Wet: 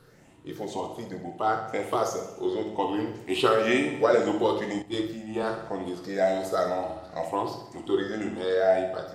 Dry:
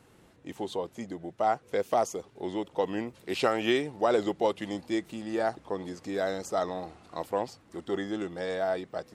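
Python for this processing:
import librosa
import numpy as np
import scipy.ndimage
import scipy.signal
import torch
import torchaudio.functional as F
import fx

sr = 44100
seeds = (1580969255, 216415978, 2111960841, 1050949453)

y = fx.spec_ripple(x, sr, per_octave=0.61, drift_hz=2.0, depth_db=11)
y = fx.echo_feedback(y, sr, ms=65, feedback_pct=60, wet_db=-9)
y = fx.room_shoebox(y, sr, seeds[0], volume_m3=46.0, walls='mixed', distance_m=0.39)
y = fx.band_widen(y, sr, depth_pct=100, at=(4.82, 5.43))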